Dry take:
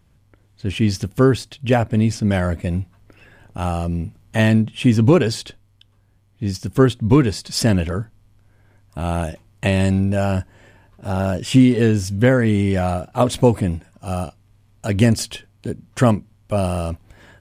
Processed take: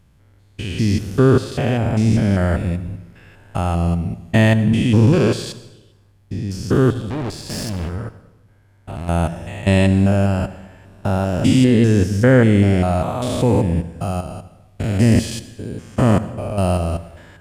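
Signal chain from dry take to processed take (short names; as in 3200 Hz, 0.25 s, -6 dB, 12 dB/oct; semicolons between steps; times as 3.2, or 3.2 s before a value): stepped spectrum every 0.2 s; 6.92–9.09 tube stage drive 26 dB, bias 0.65; on a send: reverb RT60 1.0 s, pre-delay 64 ms, DRR 13.5 dB; on the sum: gain +4 dB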